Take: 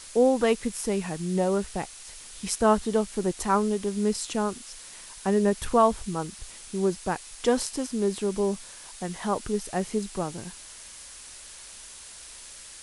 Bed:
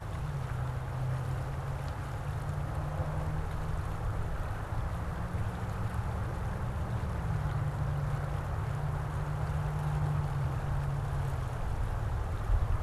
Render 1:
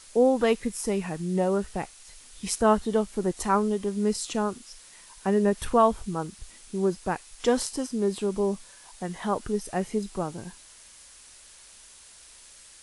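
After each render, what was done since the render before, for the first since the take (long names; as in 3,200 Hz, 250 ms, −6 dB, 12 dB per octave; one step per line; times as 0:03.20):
noise reduction from a noise print 6 dB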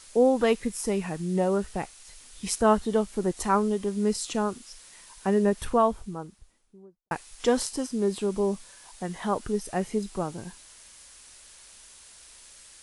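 0:05.33–0:07.11: fade out and dull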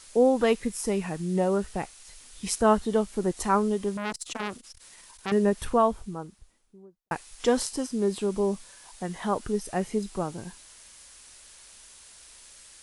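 0:03.97–0:05.32: saturating transformer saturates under 2,300 Hz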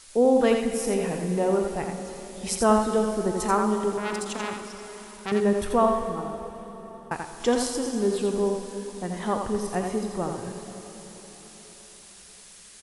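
on a send: single-tap delay 84 ms −5.5 dB
on the sum: dense smooth reverb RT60 4.6 s, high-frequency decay 0.9×, DRR 6.5 dB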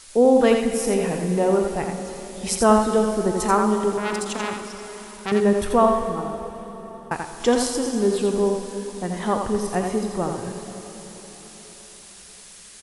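level +4 dB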